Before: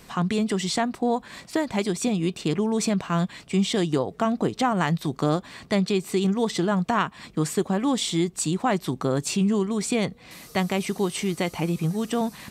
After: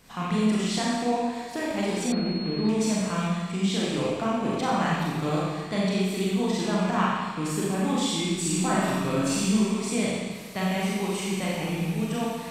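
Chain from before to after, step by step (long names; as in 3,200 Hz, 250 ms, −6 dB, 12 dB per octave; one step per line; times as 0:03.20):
loose part that buzzes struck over −38 dBFS, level −29 dBFS
parametric band 370 Hz −4 dB 0.34 octaves
0:08.24–0:09.62: flutter between parallel walls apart 9.4 metres, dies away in 0.77 s
four-comb reverb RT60 1.4 s, combs from 29 ms, DRR −6 dB
0:02.12–0:02.69: switching amplifier with a slow clock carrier 4,300 Hz
level −8 dB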